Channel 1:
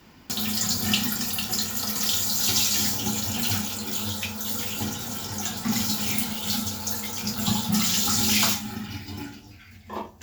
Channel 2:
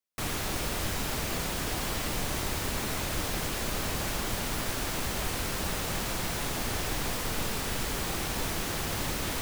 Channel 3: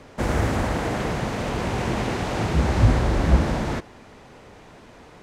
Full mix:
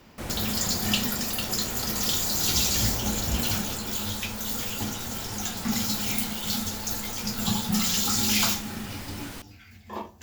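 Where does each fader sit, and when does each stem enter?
-2.0, -8.5, -13.0 dB; 0.00, 0.00, 0.00 s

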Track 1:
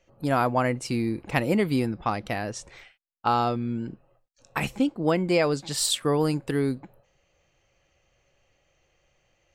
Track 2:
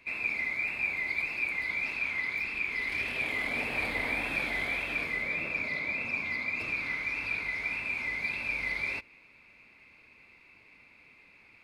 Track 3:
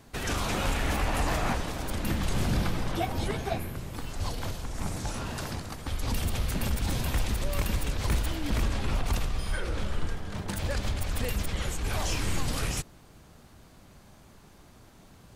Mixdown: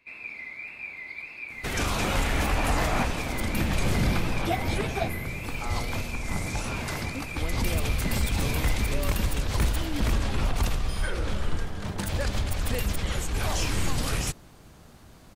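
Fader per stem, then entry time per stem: -15.5, -7.0, +2.5 dB; 2.35, 0.00, 1.50 s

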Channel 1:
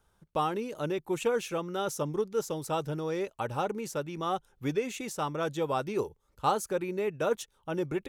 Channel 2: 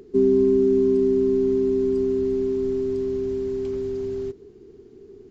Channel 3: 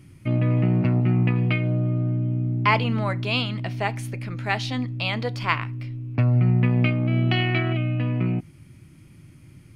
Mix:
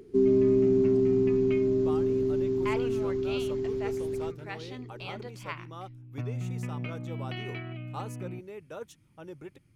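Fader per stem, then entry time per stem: -12.5, -4.5, -15.5 dB; 1.50, 0.00, 0.00 s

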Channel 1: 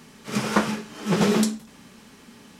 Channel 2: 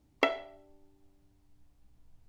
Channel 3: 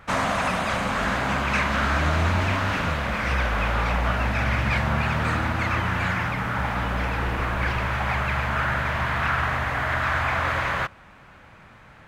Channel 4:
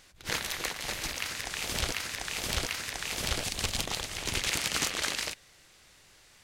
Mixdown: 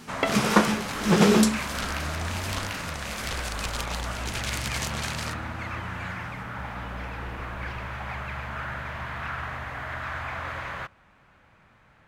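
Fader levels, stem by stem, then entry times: +2.0, +0.5, -9.5, -3.0 dB; 0.00, 0.00, 0.00, 0.00 s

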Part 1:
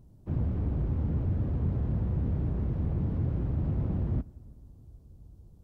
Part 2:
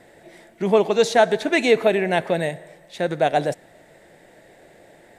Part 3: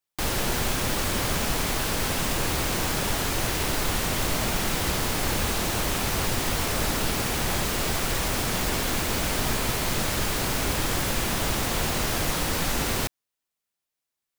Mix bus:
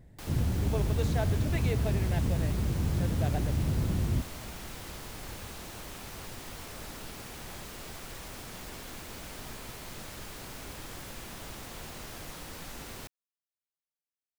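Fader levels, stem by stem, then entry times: +0.5, -19.0, -17.0 dB; 0.00, 0.00, 0.00 s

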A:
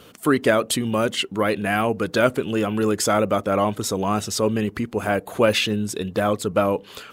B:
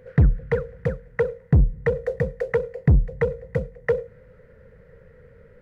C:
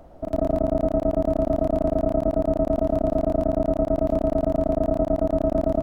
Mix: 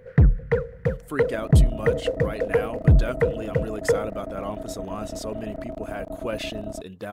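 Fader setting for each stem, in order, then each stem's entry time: -12.5, +0.5, -12.5 dB; 0.85, 0.00, 1.00 s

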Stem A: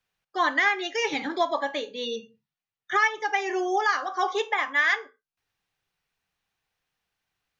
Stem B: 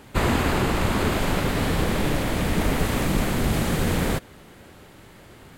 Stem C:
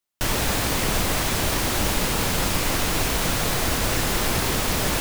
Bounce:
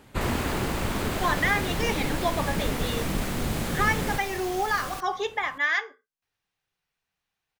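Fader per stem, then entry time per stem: -2.5, -6.0, -14.5 dB; 0.85, 0.00, 0.00 s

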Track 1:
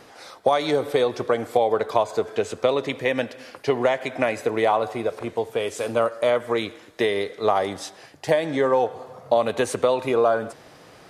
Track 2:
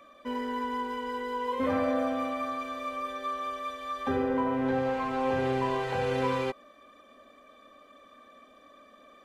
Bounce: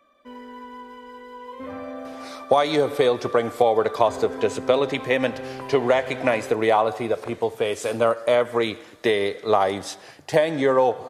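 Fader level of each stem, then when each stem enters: +1.5, -7.0 dB; 2.05, 0.00 s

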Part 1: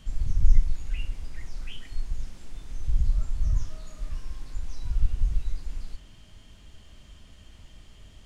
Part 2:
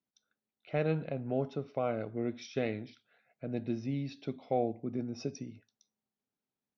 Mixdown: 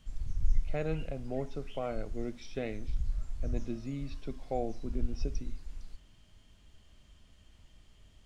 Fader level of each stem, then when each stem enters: -9.5, -3.5 dB; 0.00, 0.00 s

